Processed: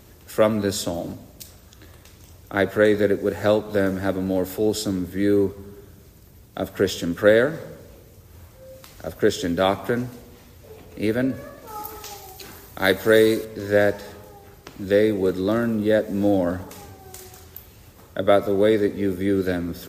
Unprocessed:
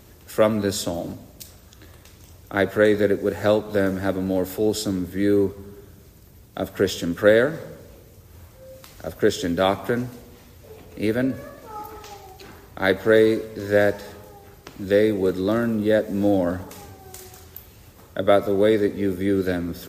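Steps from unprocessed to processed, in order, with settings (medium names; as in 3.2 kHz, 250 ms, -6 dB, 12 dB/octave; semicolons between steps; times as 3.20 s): 11.67–13.45 s: treble shelf 4.3 kHz +11.5 dB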